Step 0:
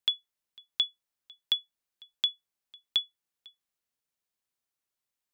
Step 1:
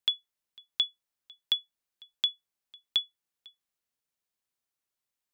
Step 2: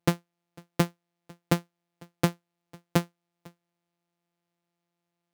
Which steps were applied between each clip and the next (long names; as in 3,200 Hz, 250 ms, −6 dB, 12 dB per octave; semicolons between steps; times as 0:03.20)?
no processing that can be heard
samples sorted by size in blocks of 256 samples; high-pass filter 75 Hz; level +4.5 dB